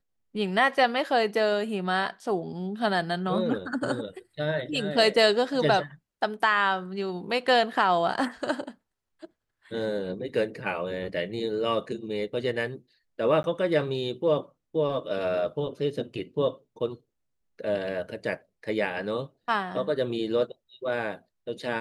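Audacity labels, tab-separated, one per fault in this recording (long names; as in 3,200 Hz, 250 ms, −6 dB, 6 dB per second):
13.430000	13.440000	drop-out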